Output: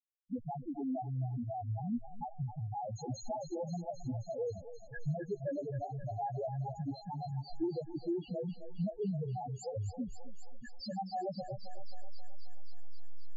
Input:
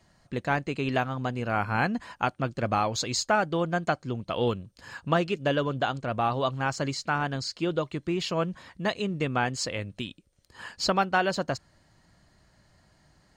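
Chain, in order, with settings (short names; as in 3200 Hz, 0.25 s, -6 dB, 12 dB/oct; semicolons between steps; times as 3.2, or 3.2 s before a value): level-crossing sampler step -35 dBFS; bell 3800 Hz -11.5 dB 2 oct; compressor 16:1, threshold -38 dBFS, peak gain reduction 18.5 dB; loudest bins only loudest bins 1; thinning echo 0.265 s, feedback 80%, high-pass 730 Hz, level -8 dB; gain +13.5 dB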